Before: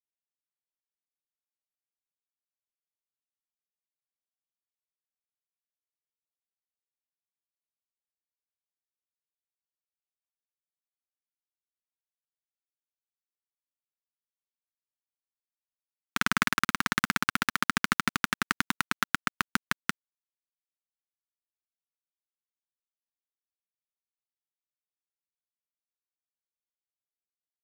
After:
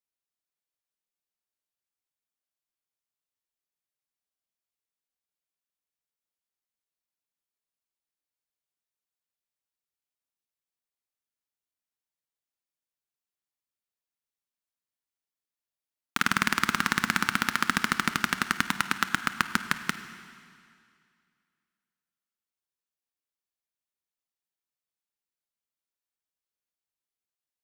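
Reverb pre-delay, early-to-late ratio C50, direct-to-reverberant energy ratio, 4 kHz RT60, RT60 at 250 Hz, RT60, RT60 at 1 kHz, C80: 26 ms, 10.5 dB, 10.0 dB, 2.2 s, 2.3 s, 2.3 s, 2.3 s, 11.5 dB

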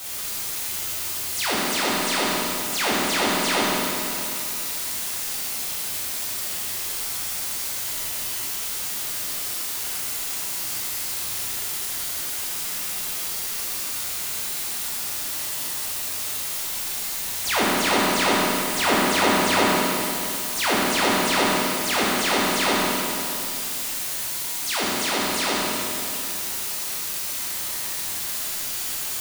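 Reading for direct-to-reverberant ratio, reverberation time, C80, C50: −7.5 dB, 2.7 s, −2.0 dB, −3.5 dB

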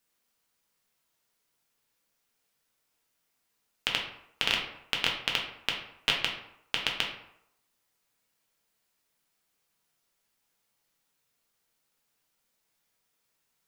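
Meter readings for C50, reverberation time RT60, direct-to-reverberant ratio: 5.5 dB, 0.75 s, −1.0 dB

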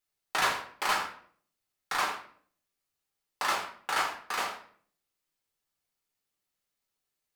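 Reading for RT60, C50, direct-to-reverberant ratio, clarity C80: 0.55 s, 7.0 dB, −2.0 dB, 11.0 dB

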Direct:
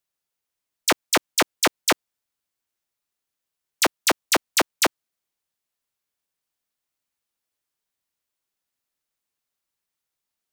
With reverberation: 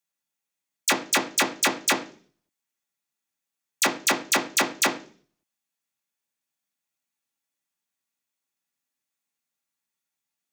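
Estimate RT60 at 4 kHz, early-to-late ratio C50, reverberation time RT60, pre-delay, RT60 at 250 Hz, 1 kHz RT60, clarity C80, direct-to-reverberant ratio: 0.45 s, 13.5 dB, 0.45 s, 3 ms, 0.60 s, 0.40 s, 17.5 dB, 0.0 dB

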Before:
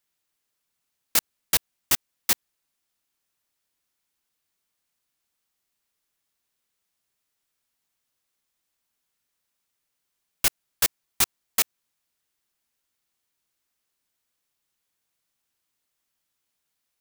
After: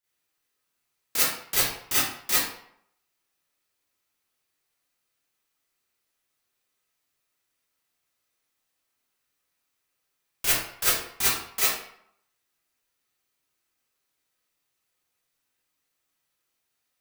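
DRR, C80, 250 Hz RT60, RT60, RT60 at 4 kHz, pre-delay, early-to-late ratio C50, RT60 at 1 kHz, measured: −12.5 dB, 3.5 dB, 0.60 s, 0.70 s, 0.50 s, 30 ms, −1.0 dB, 0.70 s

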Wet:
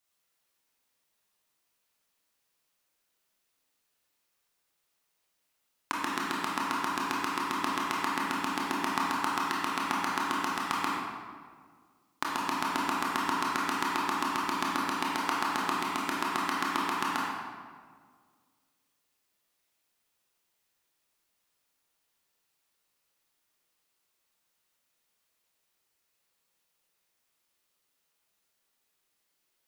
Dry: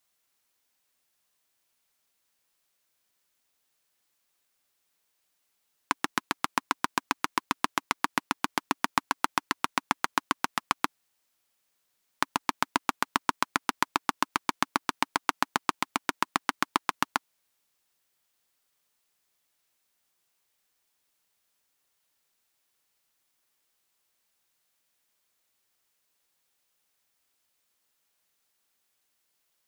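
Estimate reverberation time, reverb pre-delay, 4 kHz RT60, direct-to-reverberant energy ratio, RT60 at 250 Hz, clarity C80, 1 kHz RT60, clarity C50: 1.8 s, 21 ms, 1.1 s, −4.5 dB, 2.0 s, 1.0 dB, 1.7 s, −1.0 dB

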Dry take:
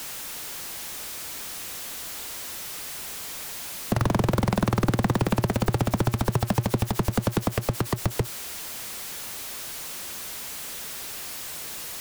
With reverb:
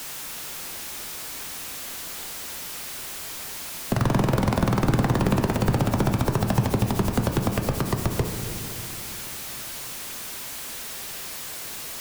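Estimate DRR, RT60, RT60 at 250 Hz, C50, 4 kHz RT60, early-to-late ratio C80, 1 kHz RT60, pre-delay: 4.0 dB, 2.7 s, 4.1 s, 6.0 dB, 1.6 s, 7.0 dB, 2.6 s, 8 ms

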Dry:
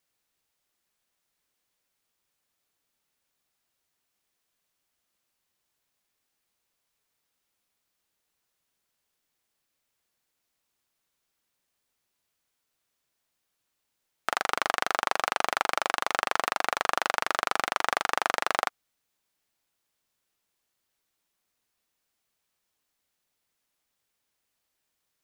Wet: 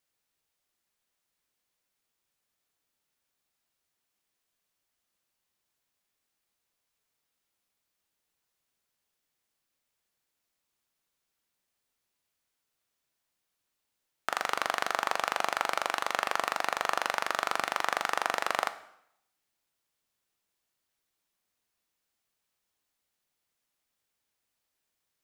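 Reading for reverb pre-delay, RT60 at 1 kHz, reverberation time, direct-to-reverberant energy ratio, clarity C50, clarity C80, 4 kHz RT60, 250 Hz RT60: 6 ms, 0.75 s, 0.75 s, 11.5 dB, 15.0 dB, 17.5 dB, 0.70 s, 0.65 s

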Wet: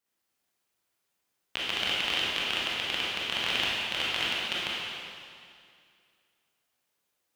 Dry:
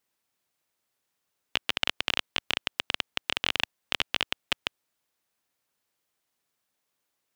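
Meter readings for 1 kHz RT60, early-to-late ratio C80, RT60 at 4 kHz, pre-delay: 2.2 s, −1.0 dB, 2.1 s, 19 ms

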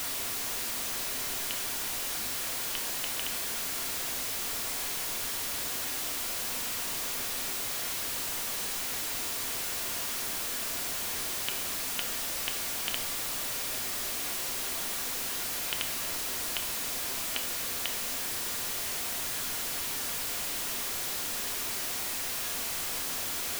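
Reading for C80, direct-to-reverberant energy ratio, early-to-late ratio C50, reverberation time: 14.5 dB, 5.5 dB, 11.5 dB, 0.85 s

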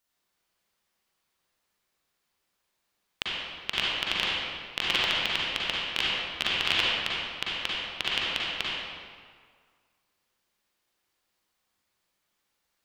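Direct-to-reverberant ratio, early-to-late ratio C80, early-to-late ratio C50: −6.5 dB, −2.0 dB, −4.5 dB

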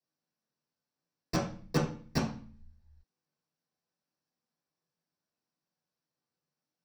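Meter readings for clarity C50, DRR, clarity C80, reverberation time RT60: 5.5 dB, −7.0 dB, 10.0 dB, 0.45 s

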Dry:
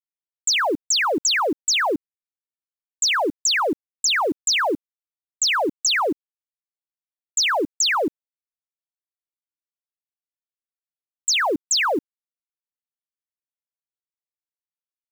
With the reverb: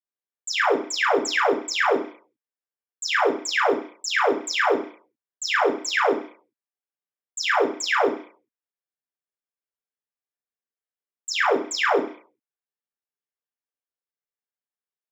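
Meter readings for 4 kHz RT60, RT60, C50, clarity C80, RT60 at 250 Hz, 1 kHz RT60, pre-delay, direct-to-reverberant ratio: 0.60 s, 0.45 s, 8.0 dB, 13.0 dB, 0.35 s, 0.50 s, 3 ms, −6.0 dB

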